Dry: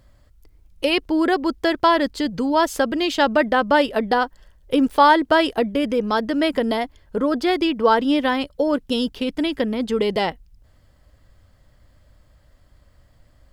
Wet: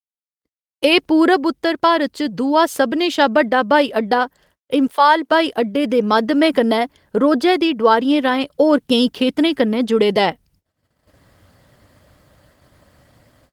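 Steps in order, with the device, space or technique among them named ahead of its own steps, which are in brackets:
0:04.91–0:05.31: high-pass filter 800 Hz → 250 Hz 12 dB per octave
video call (high-pass filter 130 Hz 12 dB per octave; automatic gain control gain up to 12 dB; noise gate −51 dBFS, range −55 dB; level −1 dB; Opus 24 kbit/s 48,000 Hz)

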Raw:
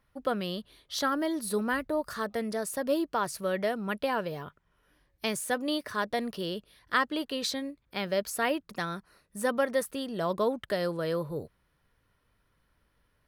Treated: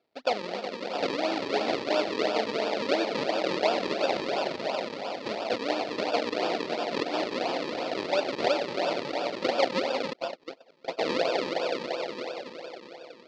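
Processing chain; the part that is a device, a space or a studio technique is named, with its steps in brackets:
echo that builds up and dies away 92 ms, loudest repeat 5, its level −8 dB
circuit-bent sampling toy (sample-and-hold swept by an LFO 42×, swing 100% 2.9 Hz; loudspeaker in its box 460–4,600 Hz, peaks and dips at 690 Hz +4 dB, 1,100 Hz −8 dB, 1,600 Hz −7 dB, 3,100 Hz −3 dB, 4,500 Hz +5 dB)
0:10.13–0:10.99: noise gate −26 dBFS, range −35 dB
level +4 dB

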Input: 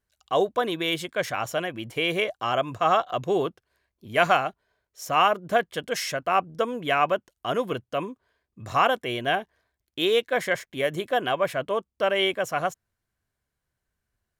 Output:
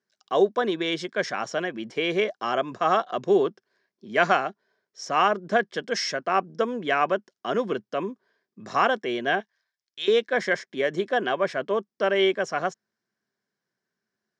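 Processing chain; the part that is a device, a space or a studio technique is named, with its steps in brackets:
0:09.40–0:10.08: guitar amp tone stack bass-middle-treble 10-0-10
television speaker (loudspeaker in its box 160–6,600 Hz, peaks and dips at 210 Hz +7 dB, 390 Hz +7 dB, 1,700 Hz +5 dB, 2,700 Hz −4 dB, 5,300 Hz +8 dB)
level −1.5 dB

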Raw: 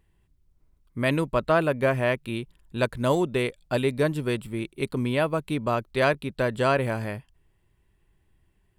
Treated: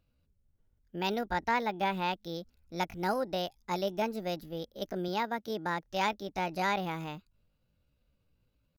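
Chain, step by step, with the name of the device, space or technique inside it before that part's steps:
chipmunk voice (pitch shifter +6.5 semitones)
0:05.08–0:05.83: high-pass filter 95 Hz
level −8 dB

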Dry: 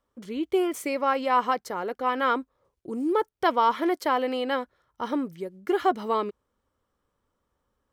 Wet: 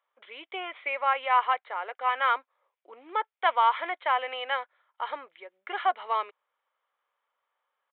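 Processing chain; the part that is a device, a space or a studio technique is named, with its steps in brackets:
musical greeting card (downsampling to 8,000 Hz; high-pass filter 660 Hz 24 dB per octave; parametric band 2,200 Hz +6 dB 0.44 octaves)

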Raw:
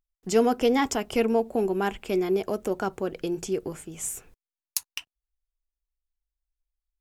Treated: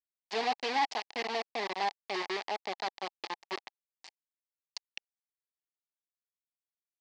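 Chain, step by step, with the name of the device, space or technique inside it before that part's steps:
hand-held game console (bit reduction 4 bits; loudspeaker in its box 470–5,000 Hz, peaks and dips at 510 Hz −7 dB, 820 Hz +9 dB, 1,400 Hz −9 dB, 2,000 Hz +5 dB, 4,500 Hz +6 dB)
level −8.5 dB

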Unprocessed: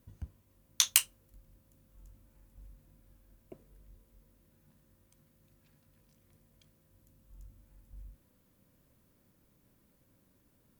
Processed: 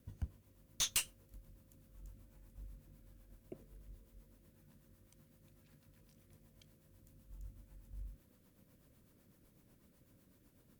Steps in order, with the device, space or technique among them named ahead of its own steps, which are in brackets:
overdriven rotary cabinet (tube saturation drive 31 dB, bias 0.3; rotating-speaker cabinet horn 8 Hz)
level +4 dB

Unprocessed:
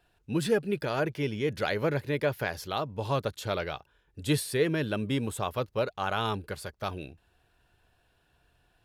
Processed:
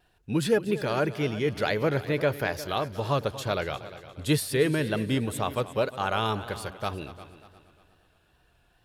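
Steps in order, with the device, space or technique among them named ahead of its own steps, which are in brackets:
multi-head tape echo (echo machine with several playback heads 118 ms, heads second and third, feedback 42%, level −16 dB; tape wow and flutter)
level +2.5 dB

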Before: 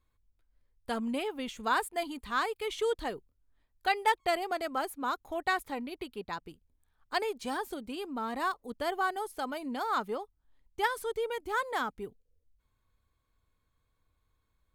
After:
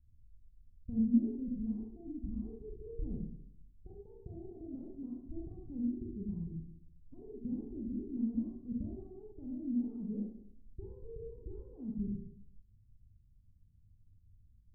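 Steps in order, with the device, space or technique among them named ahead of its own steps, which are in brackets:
club heard from the street (brickwall limiter −26 dBFS, peak gain reduction 11 dB; low-pass filter 190 Hz 24 dB per octave; convolution reverb RT60 0.65 s, pre-delay 28 ms, DRR −2 dB)
level +9.5 dB

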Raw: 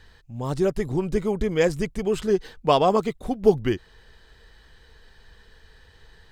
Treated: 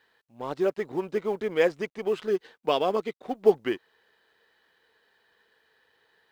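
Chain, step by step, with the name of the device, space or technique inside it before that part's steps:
0:02.14–0:03.22: dynamic equaliser 910 Hz, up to −8 dB, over −32 dBFS, Q 0.97
phone line with mismatched companding (band-pass filter 350–3,500 Hz; mu-law and A-law mismatch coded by A)

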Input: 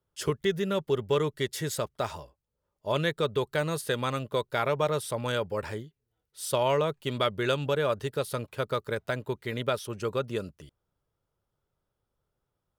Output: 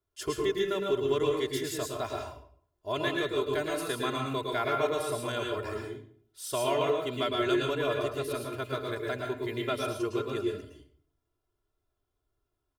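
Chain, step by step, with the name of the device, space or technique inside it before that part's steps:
microphone above a desk (comb filter 2.9 ms, depth 83%; convolution reverb RT60 0.55 s, pre-delay 103 ms, DRR 0.5 dB)
level −6 dB

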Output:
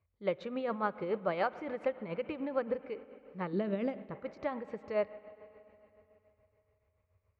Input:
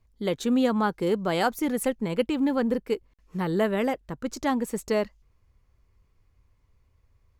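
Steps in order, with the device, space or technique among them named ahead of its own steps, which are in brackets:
combo amplifier with spring reverb and tremolo (spring reverb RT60 3.4 s, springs 46/55 ms, chirp 45 ms, DRR 14.5 dB; amplitude tremolo 7 Hz, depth 57%; loudspeaker in its box 80–3,700 Hz, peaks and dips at 89 Hz +8 dB, 250 Hz −8 dB, 580 Hz +9 dB, 1,200 Hz +5 dB, 2,300 Hz +6 dB, 3,300 Hz −7 dB)
0:03.53–0:04.11: octave-band graphic EQ 125/250/500/1,000/2,000/4,000/8,000 Hz −3/+11/−3/−7/−5/+5/+3 dB
level −8.5 dB

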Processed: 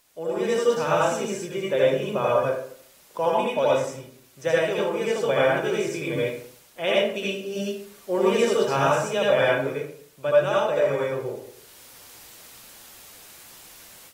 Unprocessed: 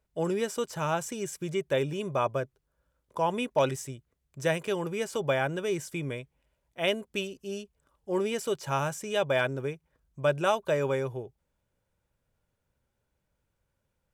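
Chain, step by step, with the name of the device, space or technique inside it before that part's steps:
filmed off a television (band-pass filter 190–7,300 Hz; parametric band 520 Hz +5 dB 0.47 octaves; convolution reverb RT60 0.55 s, pre-delay 68 ms, DRR −6 dB; white noise bed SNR 31 dB; automatic gain control gain up to 15.5 dB; level −8 dB; AAC 48 kbit/s 48,000 Hz)

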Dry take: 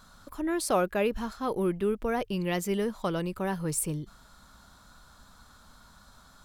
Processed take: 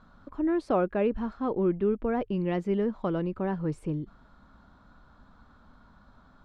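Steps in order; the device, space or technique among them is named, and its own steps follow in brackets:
phone in a pocket (low-pass filter 3,200 Hz 12 dB per octave; parametric band 280 Hz +5 dB 0.9 octaves; high-shelf EQ 2,000 Hz −10.5 dB)

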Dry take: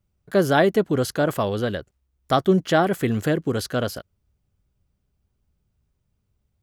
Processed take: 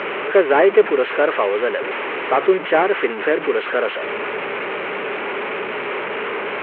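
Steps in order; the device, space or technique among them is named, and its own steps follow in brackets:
digital answering machine (band-pass filter 380–3,200 Hz; linear delta modulator 16 kbit/s, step −25 dBFS; loudspeaker in its box 410–3,800 Hz, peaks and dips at 420 Hz +7 dB, 710 Hz −5 dB, 2,300 Hz +3 dB, 3,500 Hz −6 dB)
level +7.5 dB

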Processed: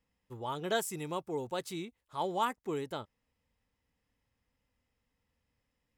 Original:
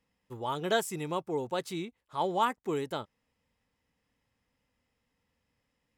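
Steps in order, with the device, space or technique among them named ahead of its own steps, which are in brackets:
0:00.75–0:02.56: high-shelf EQ 5,700 Hz +5.5 dB
low shelf boost with a cut just above (low-shelf EQ 99 Hz +8 dB; parametric band 160 Hz −2 dB)
level −4 dB

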